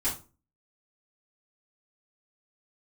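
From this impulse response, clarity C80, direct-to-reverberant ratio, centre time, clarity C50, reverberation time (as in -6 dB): 15.5 dB, -11.0 dB, 24 ms, 8.5 dB, 0.35 s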